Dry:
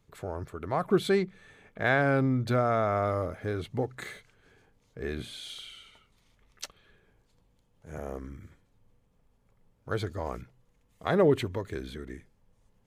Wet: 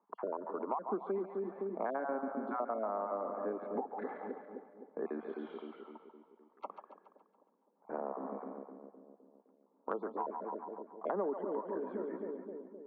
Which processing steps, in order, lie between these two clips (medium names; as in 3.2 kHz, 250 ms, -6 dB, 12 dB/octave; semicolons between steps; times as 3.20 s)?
random holes in the spectrogram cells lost 22%; steep high-pass 200 Hz 72 dB/octave; gate -58 dBFS, range -9 dB; four-pole ladder low-pass 1.1 kHz, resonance 60%; on a send: two-band feedback delay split 540 Hz, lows 257 ms, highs 140 ms, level -8.5 dB; on the sum: compression 5:1, threshold -51 dBFS, peak gain reduction 21.5 dB; trim +15.5 dB